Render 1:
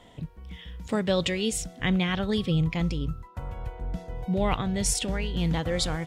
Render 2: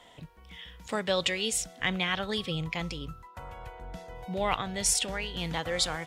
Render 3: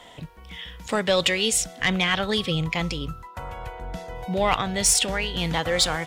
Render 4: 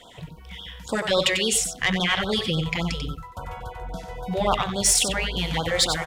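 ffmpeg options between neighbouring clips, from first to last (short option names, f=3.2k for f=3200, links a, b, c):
-filter_complex "[0:a]lowshelf=f=290:g=-6,acrossover=split=560[a][b];[b]acontrast=84[c];[a][c]amix=inputs=2:normalize=0,volume=-5.5dB"
-af "asoftclip=type=tanh:threshold=-17.5dB,volume=8dB"
-af "aecho=1:1:93:0.422,afftfilt=real='re*(1-between(b*sr/1024,220*pow(2300/220,0.5+0.5*sin(2*PI*3.6*pts/sr))/1.41,220*pow(2300/220,0.5+0.5*sin(2*PI*3.6*pts/sr))*1.41))':imag='im*(1-between(b*sr/1024,220*pow(2300/220,0.5+0.5*sin(2*PI*3.6*pts/sr))/1.41,220*pow(2300/220,0.5+0.5*sin(2*PI*3.6*pts/sr))*1.41))':win_size=1024:overlap=0.75"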